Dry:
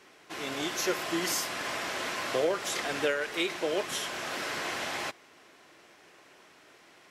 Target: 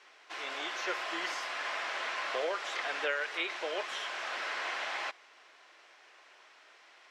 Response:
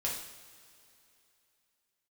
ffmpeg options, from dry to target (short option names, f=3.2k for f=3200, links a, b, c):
-filter_complex "[0:a]highpass=710,lowpass=5.6k,acrossover=split=3300[a][b];[b]acompressor=threshold=-47dB:ratio=4:attack=1:release=60[c];[a][c]amix=inputs=2:normalize=0"